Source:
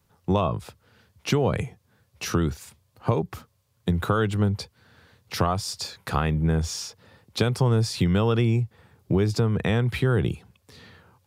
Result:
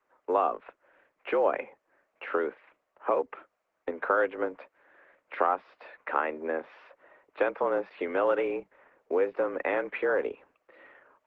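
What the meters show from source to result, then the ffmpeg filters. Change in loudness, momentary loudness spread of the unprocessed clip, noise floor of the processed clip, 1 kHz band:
-4.5 dB, 13 LU, -79 dBFS, +0.5 dB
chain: -af "highpass=f=300:t=q:w=0.5412,highpass=f=300:t=q:w=1.307,lowpass=f=2300:t=q:w=0.5176,lowpass=f=2300:t=q:w=0.7071,lowpass=f=2300:t=q:w=1.932,afreqshift=79" -ar 48000 -c:a libopus -b:a 12k

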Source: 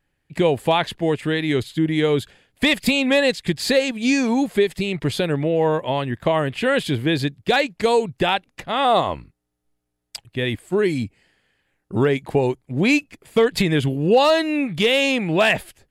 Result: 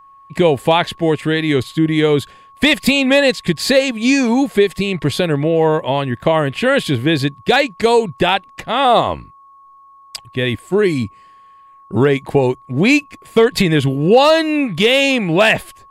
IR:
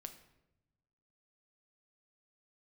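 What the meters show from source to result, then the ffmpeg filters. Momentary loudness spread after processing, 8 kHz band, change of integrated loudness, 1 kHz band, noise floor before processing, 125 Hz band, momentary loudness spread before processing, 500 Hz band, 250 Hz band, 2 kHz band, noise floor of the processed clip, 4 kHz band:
7 LU, +5.0 dB, +5.0 dB, +5.0 dB, -74 dBFS, +5.0 dB, 7 LU, +5.0 dB, +5.0 dB, +5.0 dB, -45 dBFS, +5.0 dB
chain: -af "aeval=exprs='val(0)+0.00447*sin(2*PI*1100*n/s)':c=same,volume=1.78"

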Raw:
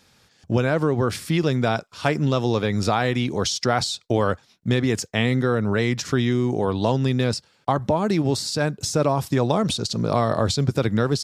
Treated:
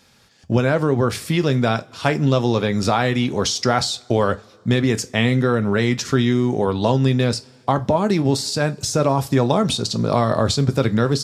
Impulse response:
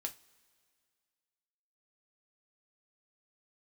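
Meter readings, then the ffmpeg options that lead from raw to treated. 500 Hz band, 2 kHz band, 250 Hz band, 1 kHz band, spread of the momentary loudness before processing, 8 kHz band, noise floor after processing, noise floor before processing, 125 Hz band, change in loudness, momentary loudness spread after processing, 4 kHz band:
+3.0 dB, +2.5 dB, +3.5 dB, +3.0 dB, 3 LU, +3.0 dB, -51 dBFS, -60 dBFS, +3.0 dB, +3.0 dB, 4 LU, +3.0 dB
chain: -filter_complex "[0:a]asplit=2[s0][s1];[1:a]atrim=start_sample=2205[s2];[s1][s2]afir=irnorm=-1:irlink=0,volume=1.26[s3];[s0][s3]amix=inputs=2:normalize=0,volume=0.708"

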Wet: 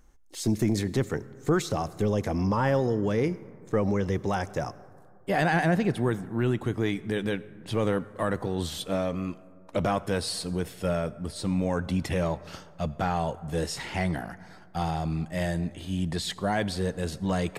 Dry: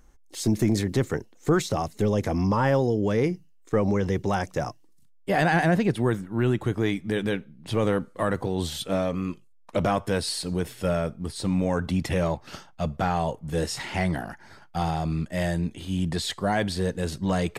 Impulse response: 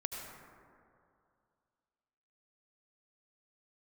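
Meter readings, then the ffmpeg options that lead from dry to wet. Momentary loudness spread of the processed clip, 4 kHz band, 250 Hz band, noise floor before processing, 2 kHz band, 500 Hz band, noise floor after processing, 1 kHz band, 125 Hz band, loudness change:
9 LU, -2.5 dB, -2.5 dB, -54 dBFS, -2.5 dB, -2.5 dB, -51 dBFS, -2.5 dB, -2.5 dB, -2.5 dB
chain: -filter_complex "[0:a]asplit=2[s0][s1];[1:a]atrim=start_sample=2205[s2];[s1][s2]afir=irnorm=-1:irlink=0,volume=0.168[s3];[s0][s3]amix=inputs=2:normalize=0,volume=0.668"

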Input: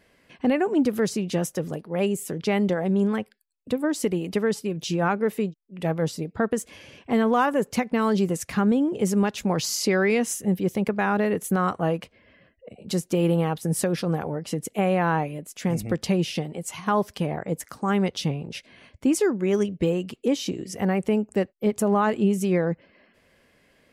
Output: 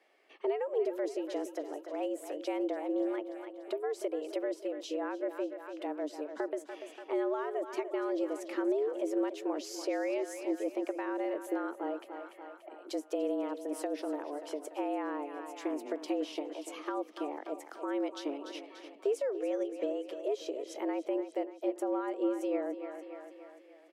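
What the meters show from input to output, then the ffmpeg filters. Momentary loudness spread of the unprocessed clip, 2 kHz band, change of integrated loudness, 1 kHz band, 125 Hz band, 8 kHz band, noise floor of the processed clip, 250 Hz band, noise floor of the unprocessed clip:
8 LU, -15.0 dB, -11.0 dB, -12.0 dB, under -40 dB, -17.5 dB, -55 dBFS, -12.0 dB, -62 dBFS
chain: -filter_complex "[0:a]highpass=200,aemphasis=mode=reproduction:type=cd,asplit=2[s0][s1];[s1]aecho=0:1:290|580|870|1160|1450:0.237|0.126|0.0666|0.0353|0.0187[s2];[s0][s2]amix=inputs=2:normalize=0,afreqshift=140,acrossover=split=470[s3][s4];[s4]acompressor=threshold=0.0158:ratio=3[s5];[s3][s5]amix=inputs=2:normalize=0,volume=0.473"

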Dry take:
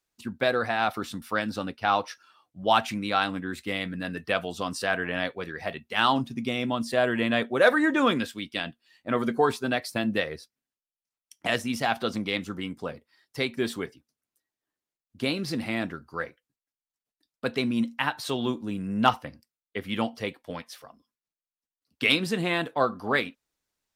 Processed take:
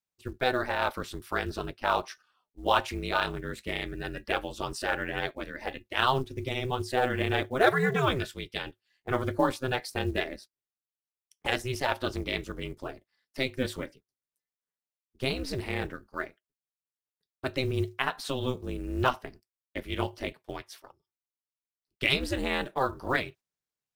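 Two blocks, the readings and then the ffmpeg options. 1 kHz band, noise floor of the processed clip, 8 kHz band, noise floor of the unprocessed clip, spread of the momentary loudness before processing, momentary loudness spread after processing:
-3.0 dB, under -85 dBFS, -3.0 dB, under -85 dBFS, 14 LU, 14 LU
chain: -af "acrusher=bits=8:mode=log:mix=0:aa=0.000001,agate=range=0.355:threshold=0.00447:ratio=16:detection=peak,aeval=exprs='val(0)*sin(2*PI*130*n/s)':c=same"

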